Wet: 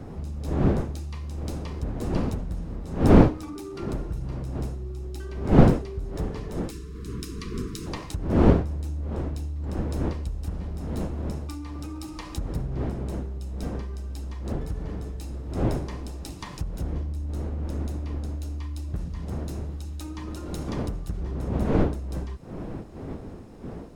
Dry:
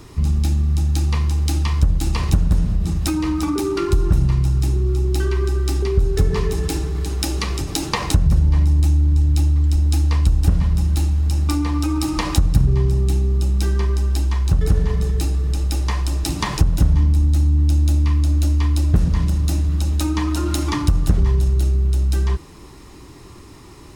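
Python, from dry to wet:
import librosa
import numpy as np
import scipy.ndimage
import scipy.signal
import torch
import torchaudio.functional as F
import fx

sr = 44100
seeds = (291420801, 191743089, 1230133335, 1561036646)

y = fx.dmg_wind(x, sr, seeds[0], corner_hz=310.0, level_db=-12.0)
y = fx.spec_erase(y, sr, start_s=6.7, length_s=1.17, low_hz=480.0, high_hz=970.0)
y = F.gain(torch.from_numpy(y), -16.0).numpy()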